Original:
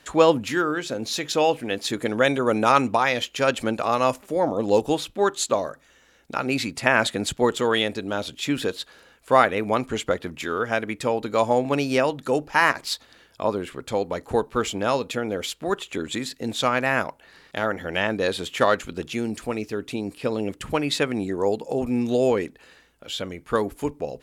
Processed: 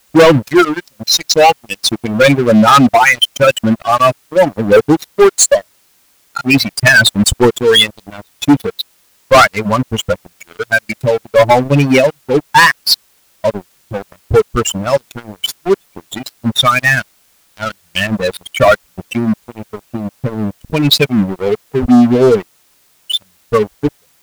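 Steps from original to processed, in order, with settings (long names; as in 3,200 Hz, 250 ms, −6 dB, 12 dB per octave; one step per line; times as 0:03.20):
spectral dynamics exaggerated over time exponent 3
leveller curve on the samples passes 5
bit-depth reduction 10 bits, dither triangular
level +7 dB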